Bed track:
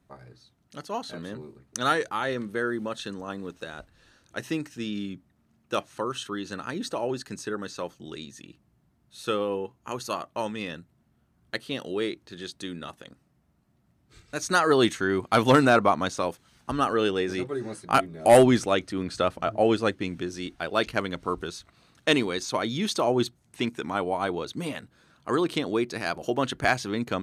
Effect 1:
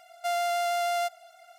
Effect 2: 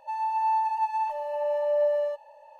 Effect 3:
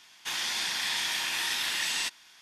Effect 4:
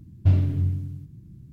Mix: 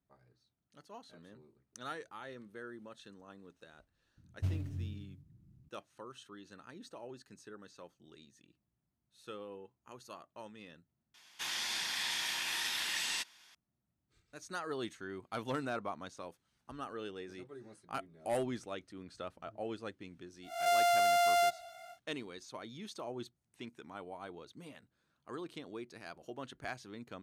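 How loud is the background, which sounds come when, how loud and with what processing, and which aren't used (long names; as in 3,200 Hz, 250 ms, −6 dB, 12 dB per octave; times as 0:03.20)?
bed track −19 dB
0:04.17: mix in 4 −16.5 dB + stylus tracing distortion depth 0.36 ms
0:11.14: overwrite with 3 −6 dB
0:20.42: mix in 1 −0.5 dB, fades 0.10 s + peak hold with a rise ahead of every peak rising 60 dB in 0.60 s
not used: 2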